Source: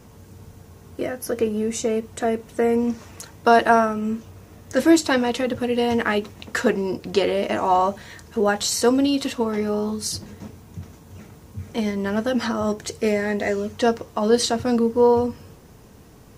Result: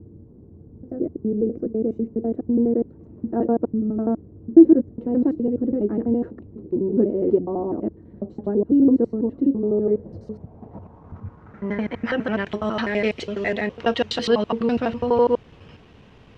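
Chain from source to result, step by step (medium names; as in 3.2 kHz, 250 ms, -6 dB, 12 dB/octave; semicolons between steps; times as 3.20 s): slices played last to first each 83 ms, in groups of 5; low-pass sweep 330 Hz -> 3 kHz, 9.45–12.60 s; trim -1.5 dB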